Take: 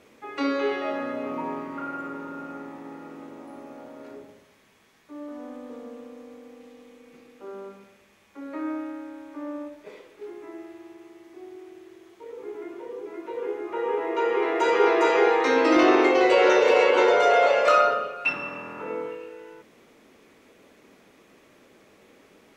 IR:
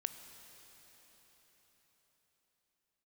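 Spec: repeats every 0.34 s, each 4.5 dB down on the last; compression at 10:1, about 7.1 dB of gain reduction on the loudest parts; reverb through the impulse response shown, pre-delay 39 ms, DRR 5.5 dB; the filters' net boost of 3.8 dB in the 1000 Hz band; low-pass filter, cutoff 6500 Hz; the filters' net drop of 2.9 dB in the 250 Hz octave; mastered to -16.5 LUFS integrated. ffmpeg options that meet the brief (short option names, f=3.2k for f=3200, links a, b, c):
-filter_complex "[0:a]lowpass=6.5k,equalizer=f=250:t=o:g=-5,equalizer=f=1k:t=o:g=5.5,acompressor=threshold=-20dB:ratio=10,aecho=1:1:340|680|1020|1360|1700|2040|2380|2720|3060:0.596|0.357|0.214|0.129|0.0772|0.0463|0.0278|0.0167|0.01,asplit=2[a][b];[1:a]atrim=start_sample=2205,adelay=39[c];[b][c]afir=irnorm=-1:irlink=0,volume=-5dB[d];[a][d]amix=inputs=2:normalize=0,volume=8dB"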